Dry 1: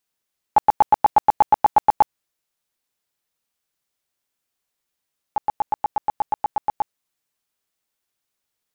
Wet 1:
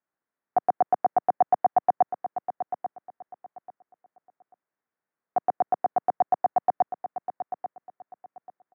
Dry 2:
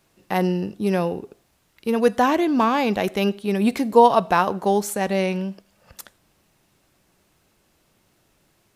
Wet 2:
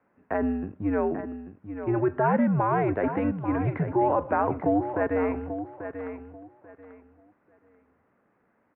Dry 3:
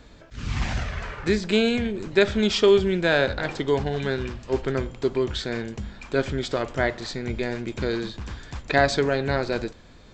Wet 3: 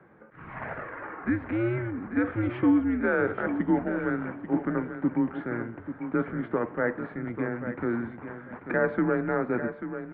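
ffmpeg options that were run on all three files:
-af "alimiter=limit=-12.5dB:level=0:latency=1:release=22,aecho=1:1:839|1678|2517:0.316|0.0696|0.0153,highpass=frequency=270:width_type=q:width=0.5412,highpass=frequency=270:width_type=q:width=1.307,lowpass=frequency=2000:width_type=q:width=0.5176,lowpass=frequency=2000:width_type=q:width=0.7071,lowpass=frequency=2000:width_type=q:width=1.932,afreqshift=-110,volume=-1dB"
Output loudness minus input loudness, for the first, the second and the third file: −5.5, −6.0, −4.5 LU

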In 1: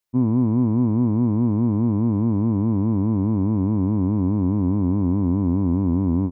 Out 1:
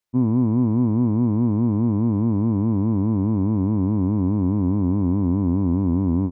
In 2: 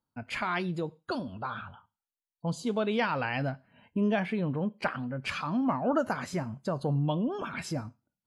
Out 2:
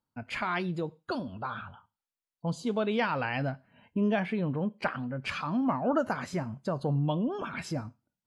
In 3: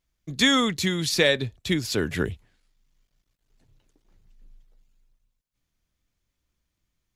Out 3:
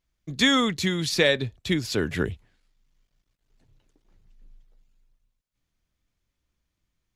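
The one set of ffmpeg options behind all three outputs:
-af "highshelf=frequency=7400:gain=-6"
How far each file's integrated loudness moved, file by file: 0.0, 0.0, −0.5 LU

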